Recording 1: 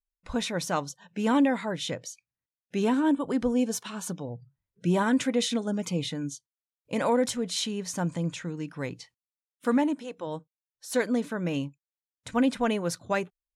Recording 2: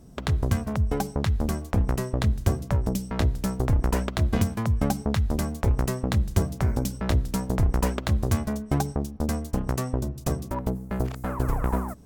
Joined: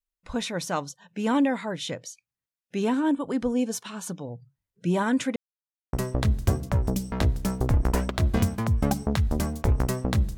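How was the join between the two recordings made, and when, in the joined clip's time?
recording 1
5.36–5.93 mute
5.93 switch to recording 2 from 1.92 s

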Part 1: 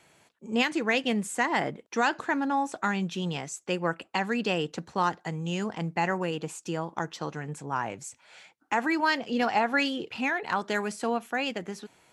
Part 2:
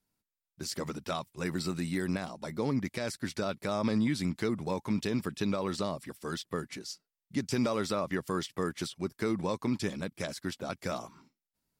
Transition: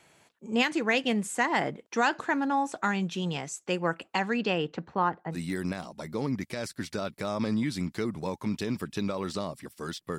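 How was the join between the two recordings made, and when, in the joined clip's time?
part 1
4.24–5.39 LPF 7000 Hz -> 1100 Hz
5.34 switch to part 2 from 1.78 s, crossfade 0.10 s

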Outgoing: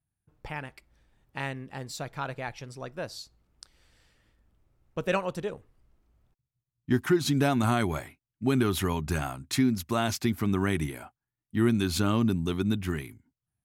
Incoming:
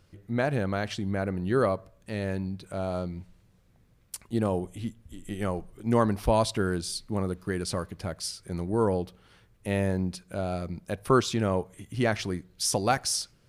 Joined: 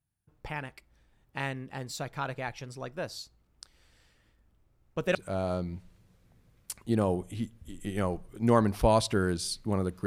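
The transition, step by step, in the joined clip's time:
outgoing
5.15 switch to incoming from 2.59 s

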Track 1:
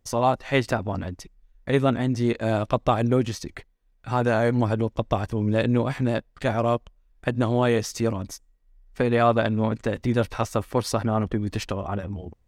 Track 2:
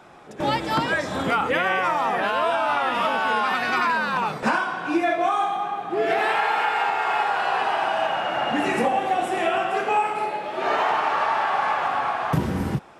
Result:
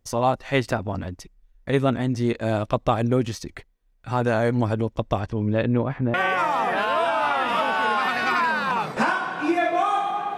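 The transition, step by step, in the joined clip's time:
track 1
5.19–6.14 LPF 6200 Hz -> 1300 Hz
6.14 switch to track 2 from 1.6 s

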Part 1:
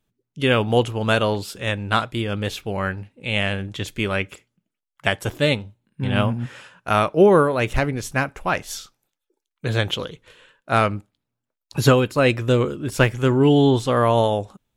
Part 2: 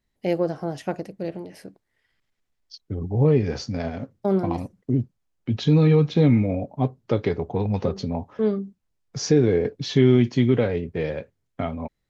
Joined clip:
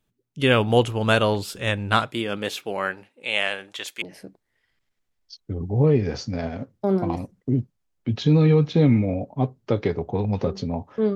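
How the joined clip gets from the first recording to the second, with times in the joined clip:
part 1
2.06–4.02 HPF 180 Hz -> 760 Hz
4.02 switch to part 2 from 1.43 s

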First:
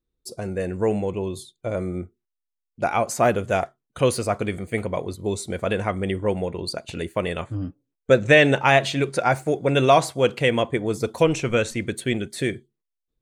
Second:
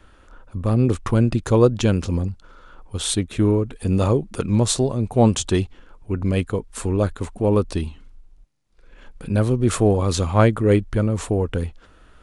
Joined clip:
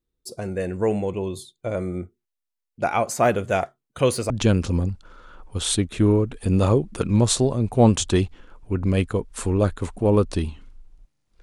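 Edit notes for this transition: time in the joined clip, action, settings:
first
4.3 switch to second from 1.69 s

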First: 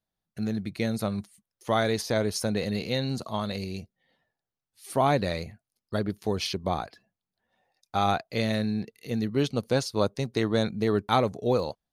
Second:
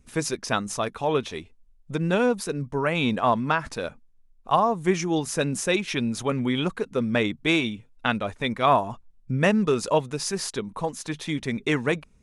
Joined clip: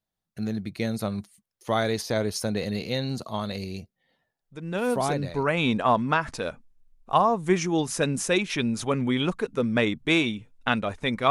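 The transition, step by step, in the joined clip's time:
first
4.97 switch to second from 2.35 s, crossfade 1.14 s equal-power

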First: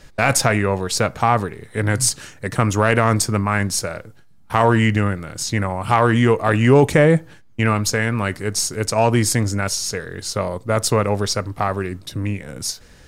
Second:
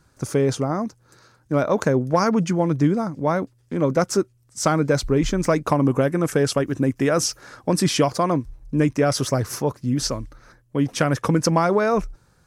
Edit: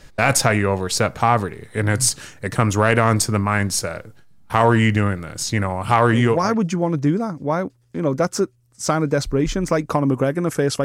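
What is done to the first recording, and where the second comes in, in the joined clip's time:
first
6.32 switch to second from 2.09 s, crossfade 0.48 s equal-power

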